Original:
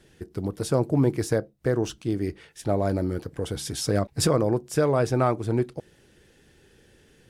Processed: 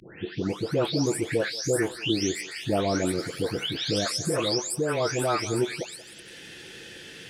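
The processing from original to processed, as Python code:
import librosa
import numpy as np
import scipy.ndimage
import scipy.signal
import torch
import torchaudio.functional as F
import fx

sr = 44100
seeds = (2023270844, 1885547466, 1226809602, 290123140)

p1 = fx.spec_delay(x, sr, highs='late', ms=502)
p2 = fx.weighting(p1, sr, curve='D')
p3 = fx.rider(p2, sr, range_db=4, speed_s=0.5)
p4 = p3 + fx.echo_thinned(p3, sr, ms=181, feedback_pct=32, hz=650.0, wet_db=-16, dry=0)
y = fx.band_squash(p4, sr, depth_pct=40)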